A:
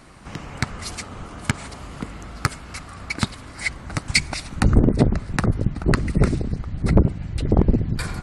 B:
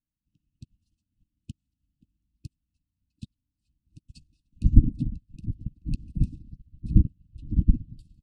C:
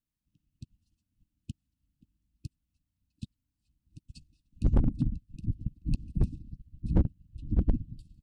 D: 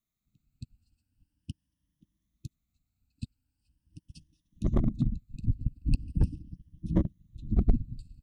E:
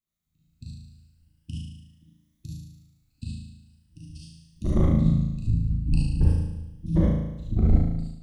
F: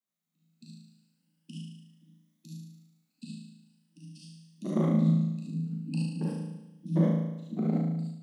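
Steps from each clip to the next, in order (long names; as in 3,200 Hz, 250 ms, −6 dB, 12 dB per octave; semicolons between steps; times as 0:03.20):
spectral tilt −2 dB per octave; brick-wall band-stop 330–2,500 Hz; expander for the loud parts 2.5 to 1, over −31 dBFS; level −5 dB
hard clipping −17.5 dBFS, distortion −4 dB
rippled gain that drifts along the octave scale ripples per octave 1.2, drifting +0.41 Hz, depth 12 dB
flutter between parallel walls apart 6.3 metres, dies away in 0.95 s; automatic gain control gain up to 7.5 dB; reverb whose tail is shaped and stops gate 90 ms rising, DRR −3.5 dB; level −8 dB
Chebyshev high-pass with heavy ripple 160 Hz, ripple 3 dB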